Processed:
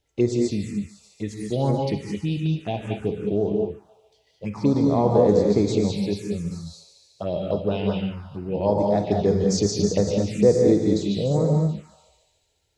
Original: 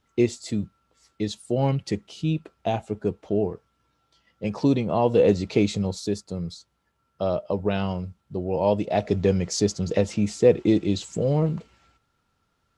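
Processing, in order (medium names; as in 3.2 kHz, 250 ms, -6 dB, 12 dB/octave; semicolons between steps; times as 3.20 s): thinning echo 145 ms, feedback 67%, high-pass 770 Hz, level -10 dB; gated-style reverb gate 240 ms rising, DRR 0.5 dB; touch-sensitive phaser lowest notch 210 Hz, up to 2.8 kHz, full sweep at -16.5 dBFS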